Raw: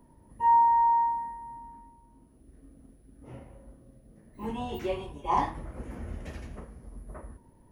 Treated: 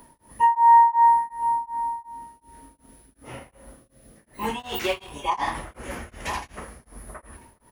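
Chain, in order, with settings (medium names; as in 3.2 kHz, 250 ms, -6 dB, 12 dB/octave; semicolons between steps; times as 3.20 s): 4.59–5.12 s: companding laws mixed up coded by A; tilt shelf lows -9 dB, about 730 Hz; echo from a far wall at 170 m, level -17 dB; loudness maximiser +18 dB; tremolo of two beating tones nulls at 2.7 Hz; trim -7 dB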